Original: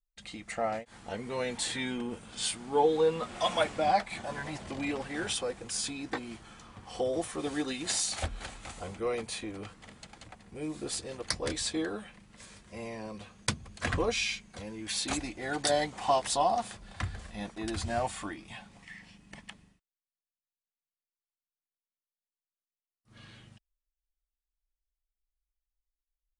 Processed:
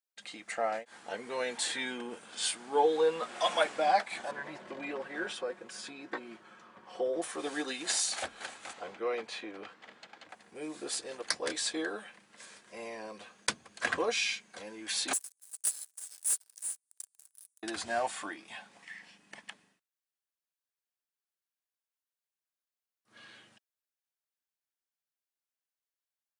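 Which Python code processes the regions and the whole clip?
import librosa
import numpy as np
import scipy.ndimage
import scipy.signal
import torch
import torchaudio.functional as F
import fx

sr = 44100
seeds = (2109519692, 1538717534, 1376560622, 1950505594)

y = fx.chain(x, sr, fx.lowpass(hz=1500.0, slope=6),
    fx.notch(hz=770.0, q=8.0),
    fx.comb(ms=5.4, depth=0.38), at=(4.31, 7.22))
y = fx.chain(y, sr, fx.lowpass(hz=4200.0, slope=12),
    fx.low_shelf(hz=70.0, db=-10.0), at=(8.73, 10.29))
y = fx.chain(y, sr, fx.cheby2_highpass(hz=1800.0, order=4, stop_db=80),
    fx.leveller(passes=5), at=(15.13, 17.63))
y = scipy.signal.sosfilt(scipy.signal.butter(2, 360.0, 'highpass', fs=sr, output='sos'), y)
y = fx.peak_eq(y, sr, hz=1600.0, db=5.5, octaves=0.2)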